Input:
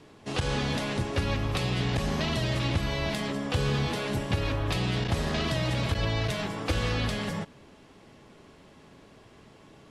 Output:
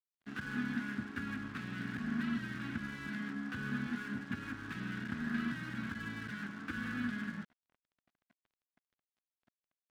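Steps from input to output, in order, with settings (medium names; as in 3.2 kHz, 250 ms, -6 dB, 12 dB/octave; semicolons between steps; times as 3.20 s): two resonant band-passes 600 Hz, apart 2.7 oct; crossover distortion -55.5 dBFS; trim +3 dB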